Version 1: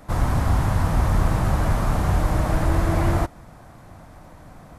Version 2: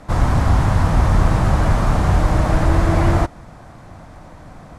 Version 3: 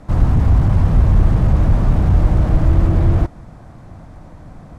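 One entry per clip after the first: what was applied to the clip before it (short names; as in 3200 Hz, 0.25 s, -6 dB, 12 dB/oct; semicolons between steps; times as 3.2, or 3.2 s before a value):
LPF 8200 Hz 12 dB/oct; gain +5 dB
low shelf 460 Hz +9 dB; slew limiter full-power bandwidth 75 Hz; gain -5.5 dB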